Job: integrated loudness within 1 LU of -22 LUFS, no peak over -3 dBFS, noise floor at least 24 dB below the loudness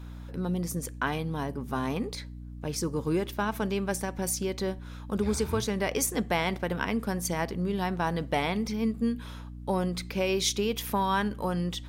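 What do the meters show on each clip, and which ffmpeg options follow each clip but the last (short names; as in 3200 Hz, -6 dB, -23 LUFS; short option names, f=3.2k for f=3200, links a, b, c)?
hum 60 Hz; harmonics up to 300 Hz; hum level -39 dBFS; loudness -30.0 LUFS; peak -13.5 dBFS; loudness target -22.0 LUFS
-> -af "bandreject=f=60:t=h:w=6,bandreject=f=120:t=h:w=6,bandreject=f=180:t=h:w=6,bandreject=f=240:t=h:w=6,bandreject=f=300:t=h:w=6"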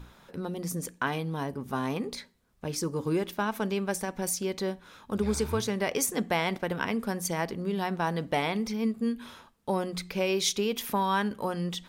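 hum none; loudness -30.5 LUFS; peak -14.5 dBFS; loudness target -22.0 LUFS
-> -af "volume=8.5dB"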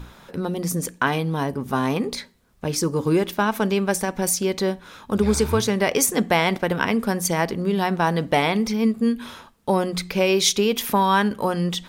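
loudness -22.0 LUFS; peak -6.0 dBFS; noise floor -52 dBFS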